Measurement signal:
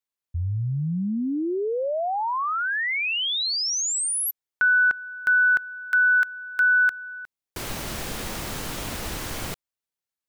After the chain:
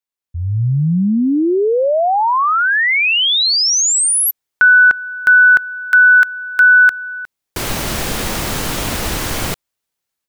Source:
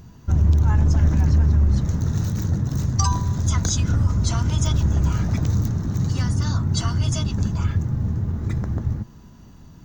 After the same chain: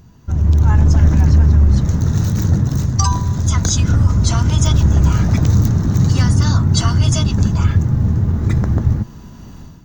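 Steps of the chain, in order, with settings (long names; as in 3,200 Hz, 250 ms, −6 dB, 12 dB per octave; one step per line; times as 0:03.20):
automatic gain control gain up to 12.5 dB
level −1 dB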